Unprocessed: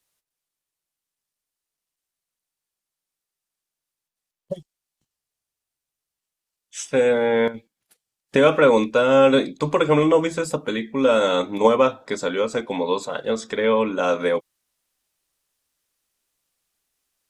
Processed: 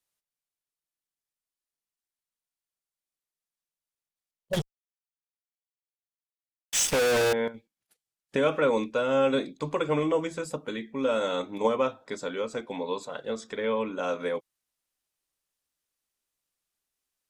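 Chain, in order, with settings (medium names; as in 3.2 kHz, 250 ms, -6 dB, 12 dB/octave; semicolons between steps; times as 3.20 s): 4.53–7.33 s: fuzz box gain 45 dB, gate -47 dBFS; trim -9 dB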